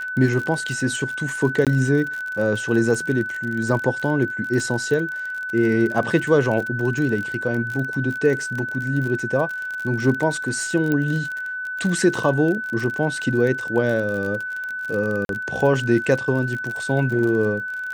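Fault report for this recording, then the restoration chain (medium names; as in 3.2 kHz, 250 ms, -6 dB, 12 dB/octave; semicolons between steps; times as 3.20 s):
crackle 41 per s -26 dBFS
whine 1.5 kHz -26 dBFS
1.65–1.67 s: dropout 17 ms
10.92 s: pop -11 dBFS
15.25–15.29 s: dropout 42 ms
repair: de-click; band-stop 1.5 kHz, Q 30; interpolate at 1.65 s, 17 ms; interpolate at 15.25 s, 42 ms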